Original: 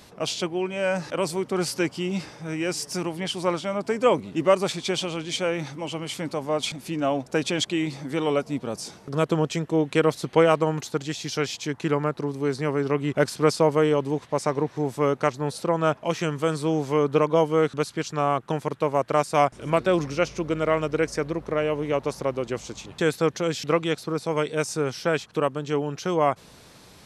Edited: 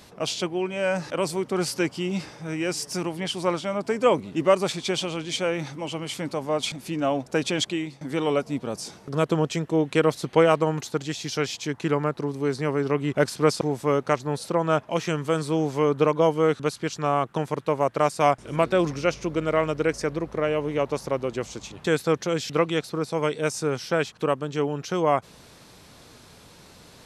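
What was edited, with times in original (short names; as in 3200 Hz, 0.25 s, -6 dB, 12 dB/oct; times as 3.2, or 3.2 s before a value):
7.67–8.01 fade out, to -18 dB
13.61–14.75 cut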